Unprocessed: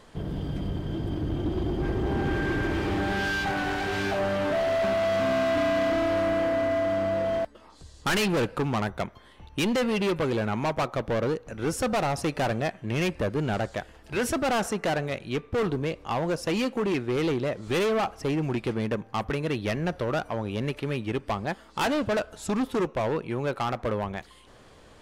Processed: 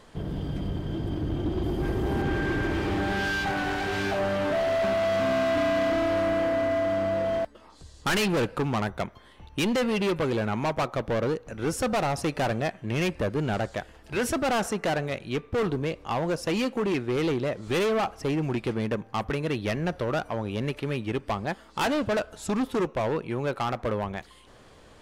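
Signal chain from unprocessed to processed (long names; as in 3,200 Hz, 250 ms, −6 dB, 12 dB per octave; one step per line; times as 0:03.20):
0:01.63–0:02.22: parametric band 13,000 Hz +10.5 dB 1.1 octaves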